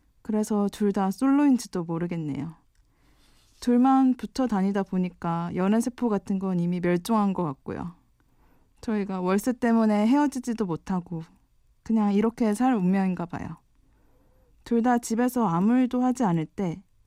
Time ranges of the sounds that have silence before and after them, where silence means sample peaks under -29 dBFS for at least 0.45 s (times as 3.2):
3.63–7.87
8.88–11.2
11.9–13.5